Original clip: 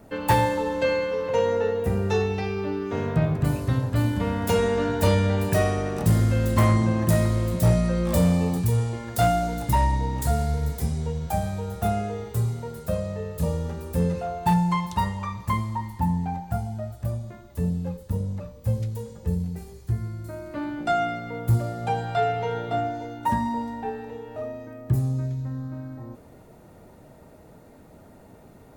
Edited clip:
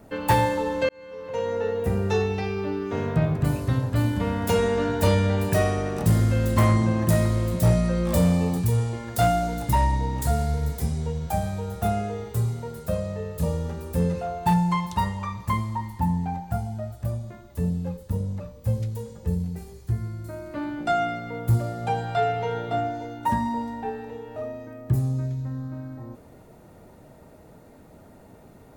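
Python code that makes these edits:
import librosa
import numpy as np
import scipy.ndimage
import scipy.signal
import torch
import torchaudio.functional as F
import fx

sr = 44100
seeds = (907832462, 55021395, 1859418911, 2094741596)

y = fx.edit(x, sr, fx.fade_in_span(start_s=0.89, length_s=0.98), tone=tone)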